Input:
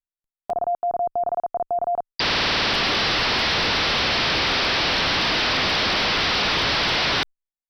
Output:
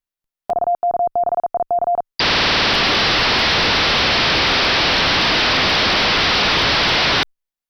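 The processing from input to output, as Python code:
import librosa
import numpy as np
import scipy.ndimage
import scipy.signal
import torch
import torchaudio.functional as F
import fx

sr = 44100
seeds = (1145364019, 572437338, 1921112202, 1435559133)

y = fx.peak_eq(x, sr, hz=8000.0, db=-3.5, octaves=0.48)
y = y * 10.0 ** (5.5 / 20.0)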